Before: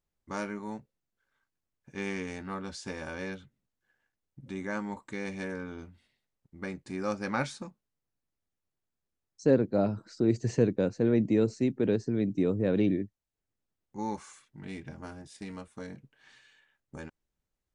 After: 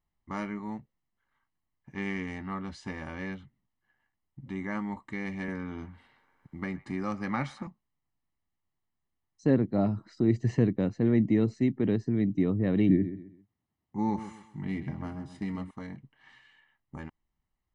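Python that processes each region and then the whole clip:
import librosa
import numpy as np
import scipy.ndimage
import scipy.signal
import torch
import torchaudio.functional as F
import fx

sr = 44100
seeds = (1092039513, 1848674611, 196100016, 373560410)

y = fx.chain(x, sr, fx.echo_wet_bandpass(ms=115, feedback_pct=65, hz=1400.0, wet_db=-19.5),
    fx.band_squash(depth_pct=40), at=(5.48, 7.67))
y = fx.chain(y, sr, fx.highpass(hz=83.0, slope=12),
    fx.low_shelf(hz=500.0, db=6.5),
    fx.echo_feedback(ms=131, feedback_pct=30, wet_db=-12.0), at=(12.89, 15.71))
y = fx.bass_treble(y, sr, bass_db=-2, treble_db=-15)
y = y + 0.6 * np.pad(y, (int(1.0 * sr / 1000.0), 0))[:len(y)]
y = fx.dynamic_eq(y, sr, hz=940.0, q=2.4, threshold_db=-51.0, ratio=4.0, max_db=-6)
y = F.gain(torch.from_numpy(y), 2.0).numpy()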